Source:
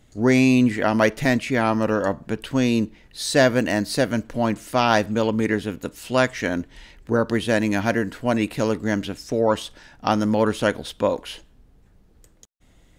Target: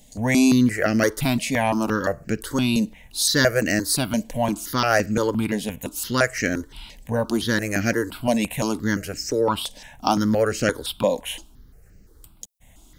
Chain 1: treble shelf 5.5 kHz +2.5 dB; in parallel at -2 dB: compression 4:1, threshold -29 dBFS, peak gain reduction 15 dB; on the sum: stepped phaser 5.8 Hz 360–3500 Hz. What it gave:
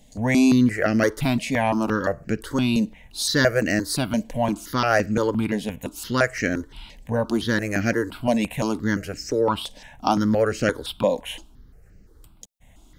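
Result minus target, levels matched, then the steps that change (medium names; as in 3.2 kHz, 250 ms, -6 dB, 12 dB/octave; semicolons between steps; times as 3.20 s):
8 kHz band -5.0 dB
change: treble shelf 5.5 kHz +12 dB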